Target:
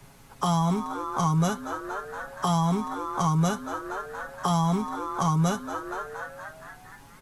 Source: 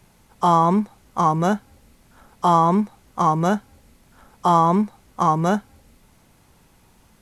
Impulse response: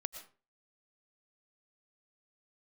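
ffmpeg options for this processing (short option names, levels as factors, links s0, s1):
-filter_complex "[0:a]equalizer=f=1200:w=1.5:g=2.5,aecho=1:1:7.3:0.61,asplit=2[s0][s1];[s1]asplit=7[s2][s3][s4][s5][s6][s7][s8];[s2]adelay=235,afreqshift=96,volume=0.178[s9];[s3]adelay=470,afreqshift=192,volume=0.11[s10];[s4]adelay=705,afreqshift=288,volume=0.0684[s11];[s5]adelay=940,afreqshift=384,volume=0.0422[s12];[s6]adelay=1175,afreqshift=480,volume=0.0263[s13];[s7]adelay=1410,afreqshift=576,volume=0.0162[s14];[s8]adelay=1645,afreqshift=672,volume=0.0101[s15];[s9][s10][s11][s12][s13][s14][s15]amix=inputs=7:normalize=0[s16];[s0][s16]amix=inputs=2:normalize=0,acrossover=split=170|3000[s17][s18][s19];[s18]acompressor=threshold=0.0316:ratio=5[s20];[s17][s20][s19]amix=inputs=3:normalize=0,volume=1.26"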